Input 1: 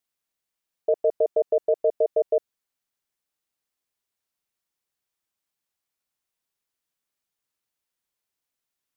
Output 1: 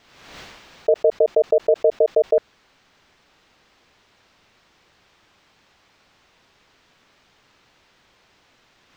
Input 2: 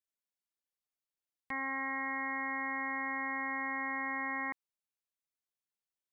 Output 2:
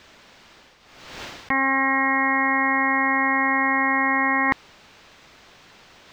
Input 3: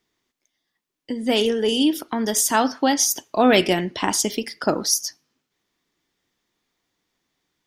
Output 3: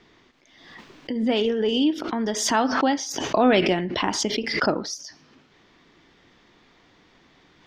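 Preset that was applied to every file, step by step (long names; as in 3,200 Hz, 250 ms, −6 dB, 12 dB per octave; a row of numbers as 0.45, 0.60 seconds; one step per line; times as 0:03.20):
reversed playback
upward compression, threshold −33 dBFS
reversed playback
high-frequency loss of the air 190 metres
background raised ahead of every attack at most 50 dB per second
normalise the peak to −6 dBFS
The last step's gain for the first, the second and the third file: +5.5, +17.0, −2.0 decibels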